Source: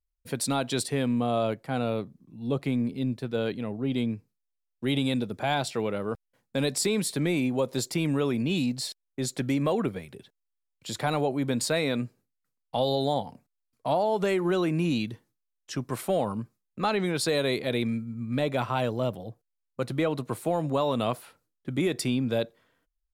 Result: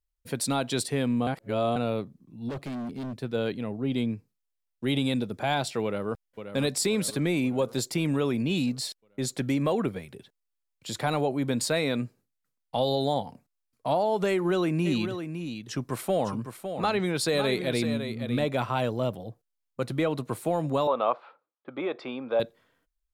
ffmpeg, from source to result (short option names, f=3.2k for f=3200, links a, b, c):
-filter_complex "[0:a]asplit=3[a][b][c];[a]afade=t=out:st=2.48:d=0.02[d];[b]asoftclip=type=hard:threshold=-32dB,afade=t=in:st=2.48:d=0.02,afade=t=out:st=3.14:d=0.02[e];[c]afade=t=in:st=3.14:d=0.02[f];[d][e][f]amix=inputs=3:normalize=0,asplit=2[g][h];[h]afade=t=in:st=5.84:d=0.01,afade=t=out:st=6.57:d=0.01,aecho=0:1:530|1060|1590|2120|2650|3180:0.334965|0.184231|0.101327|0.0557299|0.0306514|0.0168583[i];[g][i]amix=inputs=2:normalize=0,asplit=3[j][k][l];[j]afade=t=out:st=14.85:d=0.02[m];[k]aecho=1:1:557:0.376,afade=t=in:st=14.85:d=0.02,afade=t=out:st=18.44:d=0.02[n];[l]afade=t=in:st=18.44:d=0.02[o];[m][n][o]amix=inputs=3:normalize=0,asettb=1/sr,asplit=3[p][q][r];[p]atrim=end=20.874[s];[q]atrim=start=20.87:end=22.4,asetpts=PTS-STARTPTS,afade=t=in:d=0.004:c=qsin,afade=t=out:st=1.526:d=0.004:c=qsin,highpass=440,equalizer=f=540:t=q:w=4:g=6,equalizer=f=840:t=q:w=4:g=6,equalizer=f=1.2k:t=q:w=4:g=8,equalizer=f=1.9k:t=q:w=4:g=-6,equalizer=f=2.9k:t=q:w=4:g=-6,lowpass=f=3.1k:w=0.5412,lowpass=f=3.1k:w=1.3066[t];[r]atrim=start=22.396[u];[s][t]acrossfade=d=0.004:c1=hsin:c2=qsin[v];[v][u]acrossfade=d=0.004:c1=qsin:c2=hsin,asplit=3[w][x][y];[w]atrim=end=1.272[z];[x]atrim=start=1.268:end=1.762,asetpts=PTS-STARTPTS,areverse[aa];[y]atrim=start=1.758[ab];[z][aa]acrossfade=d=0.004:c1=hsin:c2=hsin[ac];[ac][ab]acrossfade=d=0.004:c1=hsin:c2=hsin"